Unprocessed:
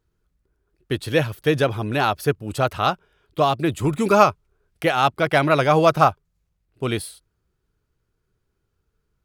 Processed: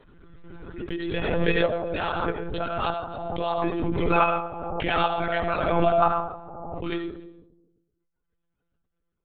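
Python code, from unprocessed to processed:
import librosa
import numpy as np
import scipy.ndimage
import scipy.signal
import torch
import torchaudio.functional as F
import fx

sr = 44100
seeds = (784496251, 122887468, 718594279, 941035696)

p1 = fx.stiff_resonator(x, sr, f0_hz=82.0, decay_s=0.25, stiffness=0.008)
p2 = fx.echo_multitap(p1, sr, ms=(69, 143, 251, 283), db=(-12.0, -13.0, -18.5, -17.0))
p3 = fx.dereverb_blind(p2, sr, rt60_s=1.2)
p4 = fx.level_steps(p3, sr, step_db=11)
p5 = p3 + F.gain(torch.from_numpy(p4), 1.5).numpy()
p6 = fx.rev_freeverb(p5, sr, rt60_s=0.93, hf_ratio=0.25, predelay_ms=40, drr_db=4.0)
p7 = fx.lpc_monotone(p6, sr, seeds[0], pitch_hz=170.0, order=16)
p8 = fx.pre_swell(p7, sr, db_per_s=29.0)
y = F.gain(torch.from_numpy(p8), -4.5).numpy()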